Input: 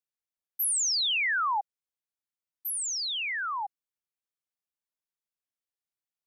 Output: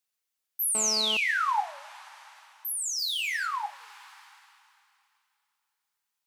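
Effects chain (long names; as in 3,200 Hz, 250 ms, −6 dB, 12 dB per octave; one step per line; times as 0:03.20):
0:02.98–0:03.46: leveller curve on the samples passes 2
flanger 1.4 Hz, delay 4.9 ms, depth 8 ms, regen +89%
coupled-rooms reverb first 0.23 s, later 2.7 s, from −21 dB, DRR 4 dB
0:00.75–0:01.17: phone interference −39 dBFS
one half of a high-frequency compander encoder only
level +3.5 dB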